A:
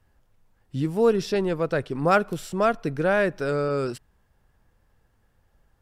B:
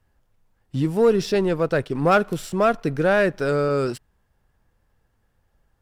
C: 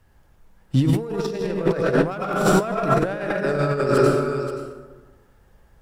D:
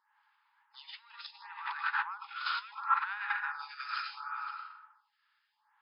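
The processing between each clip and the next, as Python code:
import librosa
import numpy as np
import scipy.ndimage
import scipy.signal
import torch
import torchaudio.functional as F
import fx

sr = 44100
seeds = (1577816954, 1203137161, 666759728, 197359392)

y1 = fx.leveller(x, sr, passes=1)
y2 = y1 + 10.0 ** (-15.0 / 20.0) * np.pad(y1, (int(530 * sr / 1000.0), 0))[:len(y1)]
y2 = fx.rev_plate(y2, sr, seeds[0], rt60_s=1.3, hf_ratio=0.5, predelay_ms=80, drr_db=-0.5)
y2 = fx.over_compress(y2, sr, threshold_db=-22.0, ratio=-0.5)
y2 = F.gain(torch.from_numpy(y2), 2.5).numpy()
y3 = fx.brickwall_bandpass(y2, sr, low_hz=810.0, high_hz=5200.0)
y3 = fx.stagger_phaser(y3, sr, hz=0.71)
y3 = F.gain(torch.from_numpy(y3), -2.5).numpy()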